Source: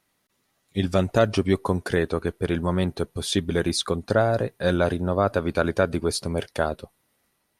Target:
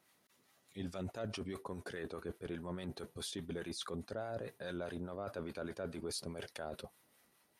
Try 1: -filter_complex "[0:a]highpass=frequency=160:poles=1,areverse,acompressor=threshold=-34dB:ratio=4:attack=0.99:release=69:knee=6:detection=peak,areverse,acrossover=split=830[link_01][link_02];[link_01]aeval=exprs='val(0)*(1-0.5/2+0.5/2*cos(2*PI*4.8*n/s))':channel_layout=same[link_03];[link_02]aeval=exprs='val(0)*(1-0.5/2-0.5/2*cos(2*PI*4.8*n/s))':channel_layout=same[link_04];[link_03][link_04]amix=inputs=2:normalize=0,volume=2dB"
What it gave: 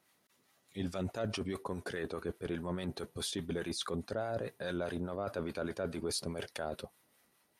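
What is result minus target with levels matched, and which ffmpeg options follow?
downward compressor: peak gain reduction −5 dB
-filter_complex "[0:a]highpass=frequency=160:poles=1,areverse,acompressor=threshold=-41dB:ratio=4:attack=0.99:release=69:knee=6:detection=peak,areverse,acrossover=split=830[link_01][link_02];[link_01]aeval=exprs='val(0)*(1-0.5/2+0.5/2*cos(2*PI*4.8*n/s))':channel_layout=same[link_03];[link_02]aeval=exprs='val(0)*(1-0.5/2-0.5/2*cos(2*PI*4.8*n/s))':channel_layout=same[link_04];[link_03][link_04]amix=inputs=2:normalize=0,volume=2dB"

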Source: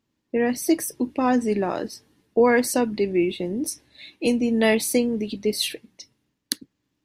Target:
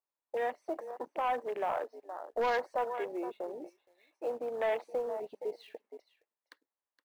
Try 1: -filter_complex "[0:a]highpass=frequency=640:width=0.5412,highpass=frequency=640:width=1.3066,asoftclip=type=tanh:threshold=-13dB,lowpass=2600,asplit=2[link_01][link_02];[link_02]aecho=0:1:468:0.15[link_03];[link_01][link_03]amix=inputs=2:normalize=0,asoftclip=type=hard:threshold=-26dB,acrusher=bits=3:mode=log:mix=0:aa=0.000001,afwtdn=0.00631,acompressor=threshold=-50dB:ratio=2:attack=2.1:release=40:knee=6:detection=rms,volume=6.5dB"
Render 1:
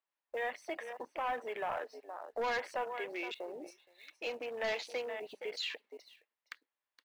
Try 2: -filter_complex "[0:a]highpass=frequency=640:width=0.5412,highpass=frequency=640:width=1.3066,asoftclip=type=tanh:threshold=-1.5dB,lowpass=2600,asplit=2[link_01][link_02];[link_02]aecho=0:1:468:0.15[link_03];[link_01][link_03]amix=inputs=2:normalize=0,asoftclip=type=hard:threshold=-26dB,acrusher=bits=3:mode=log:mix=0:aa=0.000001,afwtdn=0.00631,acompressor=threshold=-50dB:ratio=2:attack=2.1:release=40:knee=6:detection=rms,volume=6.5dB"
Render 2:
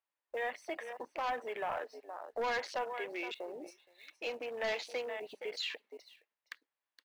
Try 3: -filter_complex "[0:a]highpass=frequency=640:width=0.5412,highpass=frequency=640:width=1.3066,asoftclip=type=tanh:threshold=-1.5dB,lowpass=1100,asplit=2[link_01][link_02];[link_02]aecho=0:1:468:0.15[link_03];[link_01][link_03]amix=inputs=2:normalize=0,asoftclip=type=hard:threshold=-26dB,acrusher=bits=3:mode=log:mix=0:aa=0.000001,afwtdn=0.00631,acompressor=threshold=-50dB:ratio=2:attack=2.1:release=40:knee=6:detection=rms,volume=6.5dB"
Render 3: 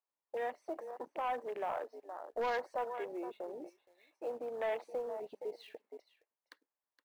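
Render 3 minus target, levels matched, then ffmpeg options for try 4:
downward compressor: peak gain reduction +4.5 dB
-filter_complex "[0:a]highpass=frequency=640:width=0.5412,highpass=frequency=640:width=1.3066,asoftclip=type=tanh:threshold=-1.5dB,lowpass=1100,asplit=2[link_01][link_02];[link_02]aecho=0:1:468:0.15[link_03];[link_01][link_03]amix=inputs=2:normalize=0,asoftclip=type=hard:threshold=-26dB,acrusher=bits=3:mode=log:mix=0:aa=0.000001,afwtdn=0.00631,acompressor=threshold=-41dB:ratio=2:attack=2.1:release=40:knee=6:detection=rms,volume=6.5dB"

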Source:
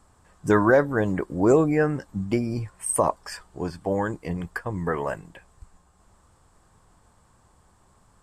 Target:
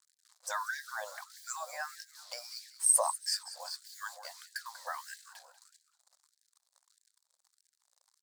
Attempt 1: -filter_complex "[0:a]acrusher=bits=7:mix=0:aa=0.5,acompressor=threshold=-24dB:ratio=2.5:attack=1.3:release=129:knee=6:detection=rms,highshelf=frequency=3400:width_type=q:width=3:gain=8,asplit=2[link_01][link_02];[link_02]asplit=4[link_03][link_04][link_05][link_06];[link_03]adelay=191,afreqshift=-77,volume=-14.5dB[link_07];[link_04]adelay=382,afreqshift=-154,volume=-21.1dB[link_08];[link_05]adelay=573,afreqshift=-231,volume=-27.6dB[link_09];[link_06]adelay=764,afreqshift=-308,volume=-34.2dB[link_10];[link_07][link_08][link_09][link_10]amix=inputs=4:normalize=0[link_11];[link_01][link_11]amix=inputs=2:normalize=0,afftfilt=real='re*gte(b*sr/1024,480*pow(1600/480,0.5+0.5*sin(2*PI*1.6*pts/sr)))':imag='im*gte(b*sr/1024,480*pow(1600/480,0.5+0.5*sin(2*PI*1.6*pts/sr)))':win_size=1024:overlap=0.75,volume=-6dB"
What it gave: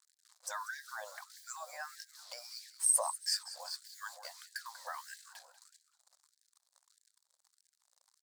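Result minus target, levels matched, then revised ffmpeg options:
downward compressor: peak gain reduction +5.5 dB
-filter_complex "[0:a]acrusher=bits=7:mix=0:aa=0.5,acompressor=threshold=-14.5dB:ratio=2.5:attack=1.3:release=129:knee=6:detection=rms,highshelf=frequency=3400:width_type=q:width=3:gain=8,asplit=2[link_01][link_02];[link_02]asplit=4[link_03][link_04][link_05][link_06];[link_03]adelay=191,afreqshift=-77,volume=-14.5dB[link_07];[link_04]adelay=382,afreqshift=-154,volume=-21.1dB[link_08];[link_05]adelay=573,afreqshift=-231,volume=-27.6dB[link_09];[link_06]adelay=764,afreqshift=-308,volume=-34.2dB[link_10];[link_07][link_08][link_09][link_10]amix=inputs=4:normalize=0[link_11];[link_01][link_11]amix=inputs=2:normalize=0,afftfilt=real='re*gte(b*sr/1024,480*pow(1600/480,0.5+0.5*sin(2*PI*1.6*pts/sr)))':imag='im*gte(b*sr/1024,480*pow(1600/480,0.5+0.5*sin(2*PI*1.6*pts/sr)))':win_size=1024:overlap=0.75,volume=-6dB"

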